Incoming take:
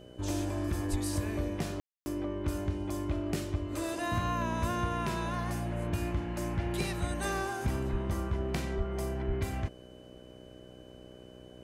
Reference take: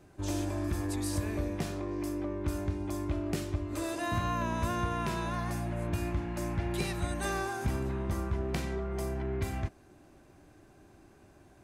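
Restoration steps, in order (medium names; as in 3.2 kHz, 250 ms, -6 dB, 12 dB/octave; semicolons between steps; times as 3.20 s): de-hum 62.2 Hz, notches 10; band-stop 3 kHz, Q 30; de-plosive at 0.90/7.91/8.77/9.27 s; room tone fill 1.80–2.06 s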